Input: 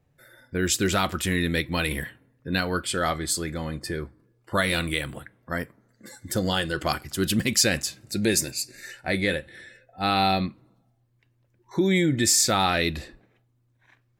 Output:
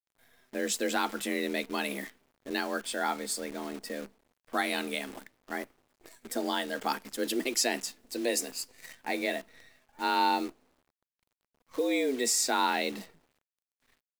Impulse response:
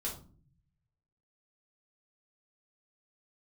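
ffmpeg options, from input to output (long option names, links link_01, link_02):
-af "afreqshift=130,adynamicequalizer=threshold=0.0126:dfrequency=910:dqfactor=2.1:tfrequency=910:tqfactor=2.1:attack=5:release=100:ratio=0.375:range=2.5:mode=boostabove:tftype=bell,acrusher=bits=7:dc=4:mix=0:aa=0.000001,volume=-7.5dB"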